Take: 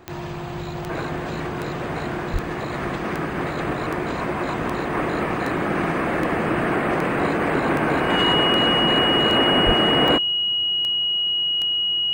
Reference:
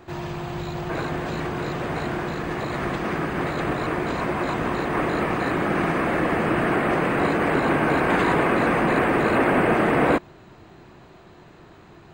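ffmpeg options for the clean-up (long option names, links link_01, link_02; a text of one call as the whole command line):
ffmpeg -i in.wav -filter_complex "[0:a]adeclick=threshold=4,bandreject=frequency=2900:width=30,asplit=3[link_01][link_02][link_03];[link_01]afade=type=out:start_time=2.32:duration=0.02[link_04];[link_02]highpass=frequency=140:width=0.5412,highpass=frequency=140:width=1.3066,afade=type=in:start_time=2.32:duration=0.02,afade=type=out:start_time=2.44:duration=0.02[link_05];[link_03]afade=type=in:start_time=2.44:duration=0.02[link_06];[link_04][link_05][link_06]amix=inputs=3:normalize=0,asplit=3[link_07][link_08][link_09];[link_07]afade=type=out:start_time=9.65:duration=0.02[link_10];[link_08]highpass=frequency=140:width=0.5412,highpass=frequency=140:width=1.3066,afade=type=in:start_time=9.65:duration=0.02,afade=type=out:start_time=9.77:duration=0.02[link_11];[link_09]afade=type=in:start_time=9.77:duration=0.02[link_12];[link_10][link_11][link_12]amix=inputs=3:normalize=0" out.wav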